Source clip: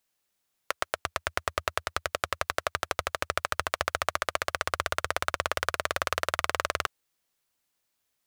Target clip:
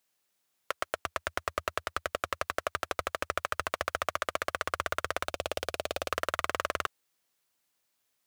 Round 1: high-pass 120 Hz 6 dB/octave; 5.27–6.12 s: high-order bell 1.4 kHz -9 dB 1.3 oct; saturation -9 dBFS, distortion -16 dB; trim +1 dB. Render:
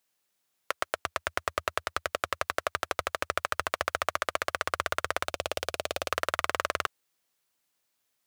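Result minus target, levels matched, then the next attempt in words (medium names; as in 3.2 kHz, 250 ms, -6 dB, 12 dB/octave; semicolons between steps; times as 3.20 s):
saturation: distortion -7 dB
high-pass 120 Hz 6 dB/octave; 5.27–6.12 s: high-order bell 1.4 kHz -9 dB 1.3 oct; saturation -15.5 dBFS, distortion -9 dB; trim +1 dB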